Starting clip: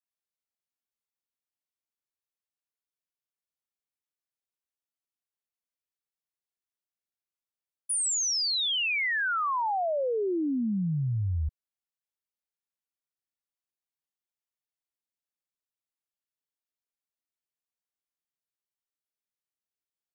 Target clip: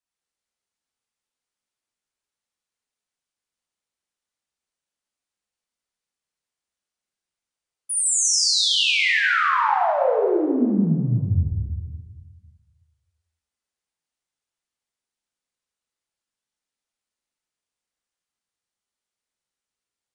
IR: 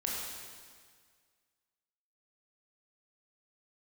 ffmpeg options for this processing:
-filter_complex "[1:a]atrim=start_sample=2205[link_01];[0:a][link_01]afir=irnorm=-1:irlink=0,aresample=22050,aresample=44100,volume=4dB"

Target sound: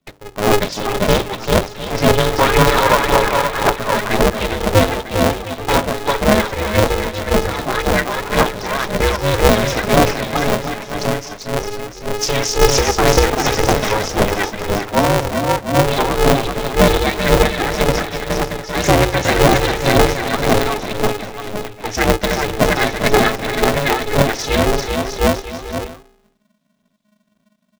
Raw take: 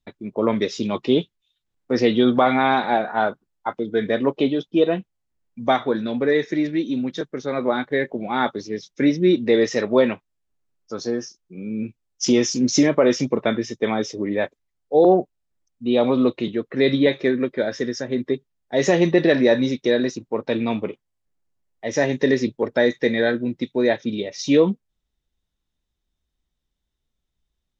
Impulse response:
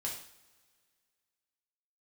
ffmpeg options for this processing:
-af "equalizer=frequency=150:width_type=o:width=0.77:gain=-4,bandreject=frequency=49.11:width_type=h:width=4,bandreject=frequency=98.22:width_type=h:width=4,bandreject=frequency=147.33:width_type=h:width=4,bandreject=frequency=196.44:width_type=h:width=4,bandreject=frequency=245.55:width_type=h:width=4,bandreject=frequency=294.66:width_type=h:width=4,bandreject=frequency=343.77:width_type=h:width=4,bandreject=frequency=392.88:width_type=h:width=4,bandreject=frequency=441.99:width_type=h:width=4,bandreject=frequency=491.1:width_type=h:width=4,bandreject=frequency=540.21:width_type=h:width=4,bandreject=frequency=589.32:width_type=h:width=4,bandreject=frequency=638.43:width_type=h:width=4,bandreject=frequency=687.54:width_type=h:width=4,bandreject=frequency=736.65:width_type=h:width=4,bandreject=frequency=785.76:width_type=h:width=4,afreqshift=-15,aecho=1:1:390|702|951.6|1151|1311:0.631|0.398|0.251|0.158|0.1,aphaser=in_gain=1:out_gain=1:delay=1.5:decay=0.69:speed=1.9:type=triangular,alimiter=level_in=3.5dB:limit=-1dB:release=50:level=0:latency=1,aeval=exprs='val(0)*sgn(sin(2*PI*210*n/s))':channel_layout=same,volume=-1dB"

